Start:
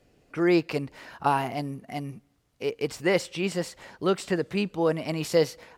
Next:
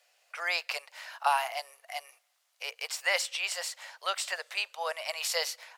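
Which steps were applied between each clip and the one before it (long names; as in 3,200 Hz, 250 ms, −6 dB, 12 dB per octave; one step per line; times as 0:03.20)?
Butterworth high-pass 580 Hz 48 dB per octave
tilt shelving filter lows −5.5 dB, about 1,400 Hz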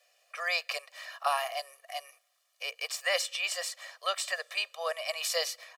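comb filter 1.7 ms, depth 97%
level −3 dB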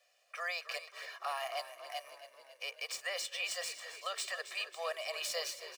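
running median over 3 samples
brickwall limiter −24.5 dBFS, peak gain reduction 10 dB
echo with shifted repeats 273 ms, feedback 61%, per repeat −34 Hz, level −12.5 dB
level −3.5 dB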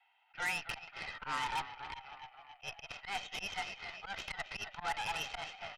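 single-sideband voice off tune +210 Hz 210–3,000 Hz
volume swells 100 ms
harmonic generator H 8 −17 dB, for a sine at −27 dBFS
level +2.5 dB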